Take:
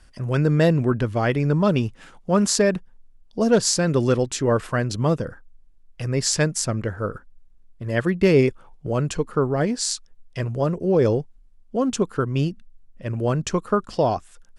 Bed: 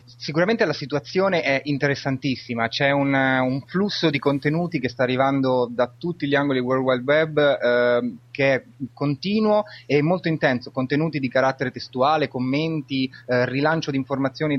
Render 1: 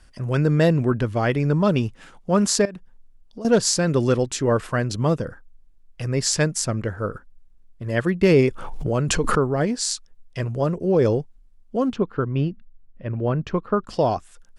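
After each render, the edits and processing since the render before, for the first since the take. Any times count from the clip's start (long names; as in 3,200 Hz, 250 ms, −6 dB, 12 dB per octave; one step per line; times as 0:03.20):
0:02.65–0:03.45: downward compressor 5 to 1, threshold −33 dBFS
0:08.23–0:09.51: background raised ahead of every attack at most 30 dB per second
0:11.93–0:13.87: high-frequency loss of the air 300 metres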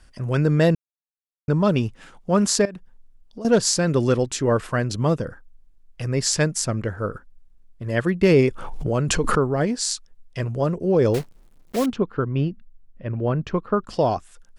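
0:00.75–0:01.48: silence
0:11.14–0:11.86: one scale factor per block 3 bits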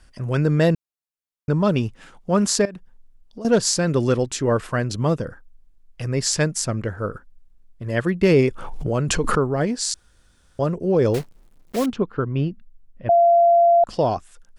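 0:09.94–0:10.59: fill with room tone
0:13.09–0:13.84: beep over 686 Hz −11 dBFS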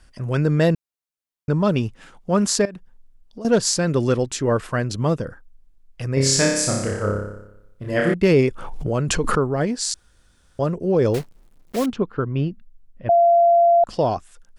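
0:06.14–0:08.14: flutter between parallel walls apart 5.1 metres, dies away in 0.86 s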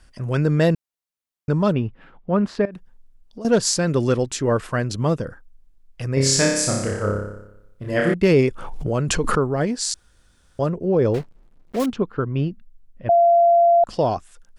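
0:01.72–0:02.72: high-frequency loss of the air 410 metres
0:10.69–0:11.80: low-pass filter 2,200 Hz 6 dB per octave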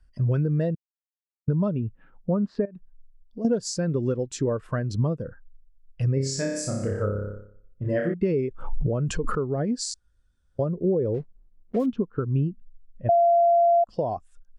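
downward compressor 12 to 1, threshold −25 dBFS, peak gain reduction 14.5 dB
every bin expanded away from the loudest bin 1.5 to 1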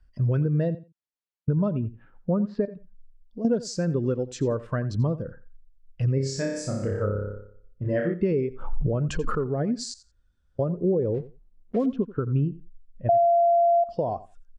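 high-frequency loss of the air 64 metres
repeating echo 87 ms, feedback 16%, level −17 dB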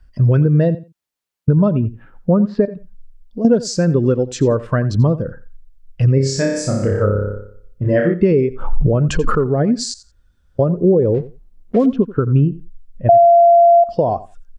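level +10.5 dB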